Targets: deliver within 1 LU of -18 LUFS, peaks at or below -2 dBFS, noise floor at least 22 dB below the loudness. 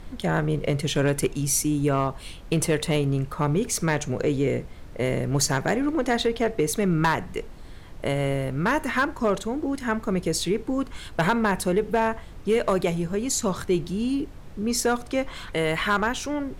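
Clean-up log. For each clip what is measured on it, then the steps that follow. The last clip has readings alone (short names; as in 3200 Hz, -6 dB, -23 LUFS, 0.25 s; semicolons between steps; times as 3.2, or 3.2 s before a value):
clipped 0.4%; flat tops at -14.5 dBFS; noise floor -41 dBFS; noise floor target -47 dBFS; loudness -25.0 LUFS; peak -14.5 dBFS; loudness target -18.0 LUFS
-> clip repair -14.5 dBFS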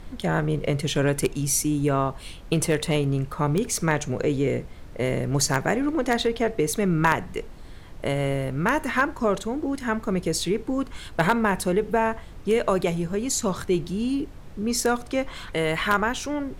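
clipped 0.0%; noise floor -41 dBFS; noise floor target -47 dBFS
-> noise print and reduce 6 dB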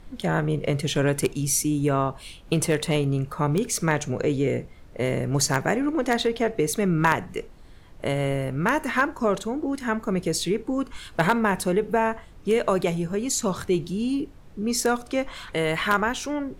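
noise floor -46 dBFS; noise floor target -47 dBFS
-> noise print and reduce 6 dB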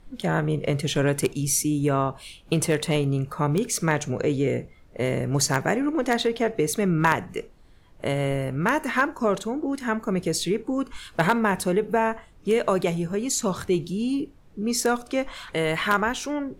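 noise floor -51 dBFS; loudness -25.0 LUFS; peak -5.5 dBFS; loudness target -18.0 LUFS
-> gain +7 dB; limiter -2 dBFS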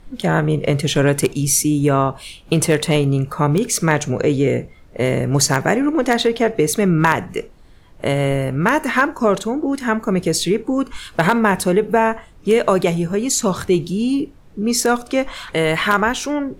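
loudness -18.0 LUFS; peak -2.0 dBFS; noise floor -44 dBFS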